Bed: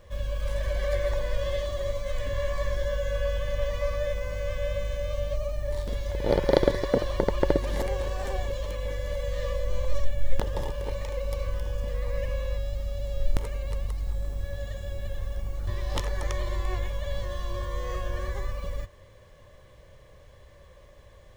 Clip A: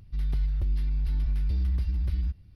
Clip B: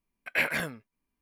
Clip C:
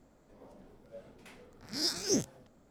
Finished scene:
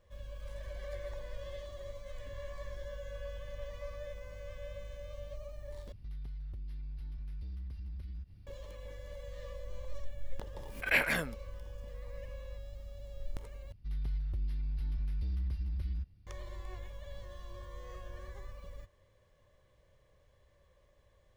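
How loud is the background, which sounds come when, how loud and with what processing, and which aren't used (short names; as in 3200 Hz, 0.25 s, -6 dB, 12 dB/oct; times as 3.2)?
bed -15 dB
5.92 replace with A -2 dB + compressor 5:1, threshold -40 dBFS
10.56 add B -1.5 dB + backwards sustainer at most 130 dB/s
13.72 replace with A -8.5 dB
not used: C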